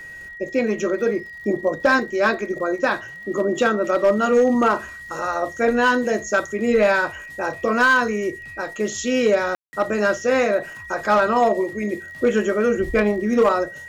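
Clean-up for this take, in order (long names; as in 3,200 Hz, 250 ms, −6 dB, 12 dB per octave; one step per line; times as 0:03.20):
clipped peaks rebuilt −10 dBFS
click removal
notch filter 1,900 Hz, Q 30
ambience match 0:09.55–0:09.73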